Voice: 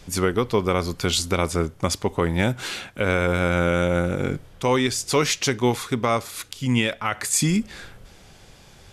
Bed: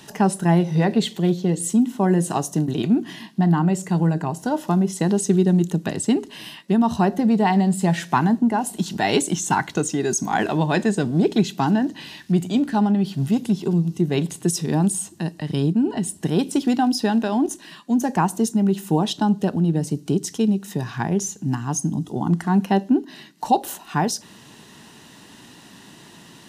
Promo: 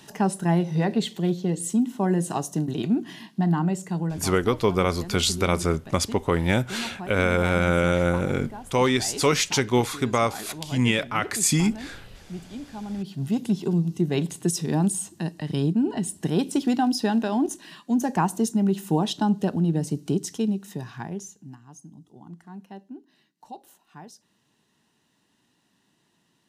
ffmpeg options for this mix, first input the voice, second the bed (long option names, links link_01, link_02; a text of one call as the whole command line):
ffmpeg -i stem1.wav -i stem2.wav -filter_complex "[0:a]adelay=4100,volume=-0.5dB[link_01];[1:a]volume=10dB,afade=type=out:start_time=3.63:duration=0.92:silence=0.223872,afade=type=in:start_time=12.83:duration=0.65:silence=0.188365,afade=type=out:start_time=20.06:duration=1.53:silence=0.1[link_02];[link_01][link_02]amix=inputs=2:normalize=0" out.wav